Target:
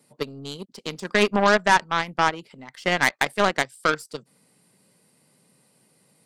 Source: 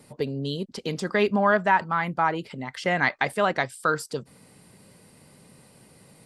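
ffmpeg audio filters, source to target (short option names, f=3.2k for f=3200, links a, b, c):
-af "highpass=f=130:w=0.5412,highpass=f=130:w=1.3066,aeval=exprs='0.422*(cos(1*acos(clip(val(0)/0.422,-1,1)))-cos(1*PI/2))+0.0188*(cos(4*acos(clip(val(0)/0.422,-1,1)))-cos(4*PI/2))+0.0473*(cos(7*acos(clip(val(0)/0.422,-1,1)))-cos(7*PI/2))':c=same,acontrast=37,highshelf=f=4.2k:g=5.5,volume=-2dB"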